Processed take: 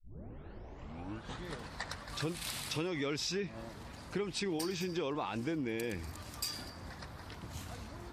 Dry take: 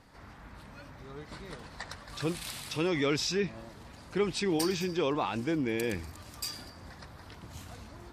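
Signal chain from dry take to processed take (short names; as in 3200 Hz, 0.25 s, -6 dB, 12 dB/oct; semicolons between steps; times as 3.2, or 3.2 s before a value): tape start at the beginning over 1.58 s; compressor 6:1, threshold -34 dBFS, peak gain reduction 10.5 dB; gain +1 dB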